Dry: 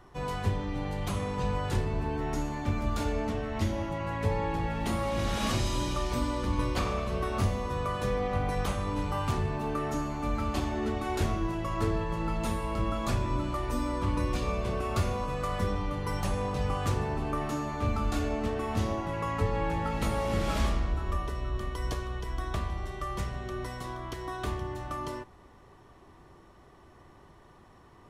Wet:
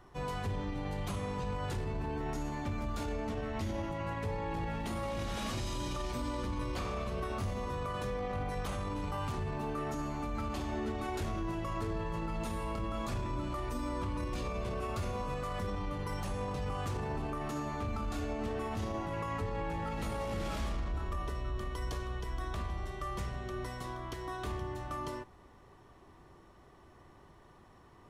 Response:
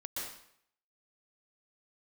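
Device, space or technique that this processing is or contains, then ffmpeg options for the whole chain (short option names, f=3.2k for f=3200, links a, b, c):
clipper into limiter: -af "asoftclip=type=hard:threshold=-19.5dB,alimiter=level_in=1.5dB:limit=-24dB:level=0:latency=1:release=20,volume=-1.5dB,volume=-3dB"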